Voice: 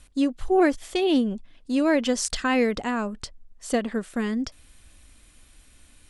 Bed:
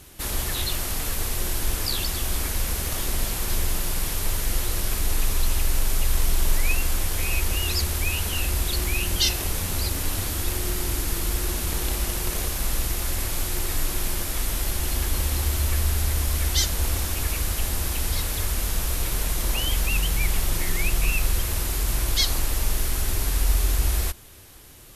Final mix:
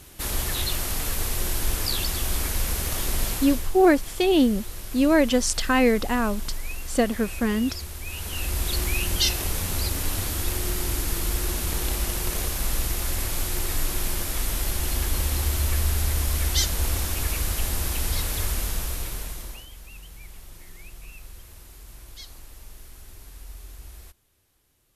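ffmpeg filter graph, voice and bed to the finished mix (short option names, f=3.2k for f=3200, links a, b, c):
-filter_complex "[0:a]adelay=3250,volume=2.5dB[a];[1:a]volume=10.5dB,afade=t=out:st=3.31:d=0.39:silence=0.281838,afade=t=in:st=8.03:d=0.71:silence=0.298538,afade=t=out:st=18.47:d=1.2:silence=0.1[b];[a][b]amix=inputs=2:normalize=0"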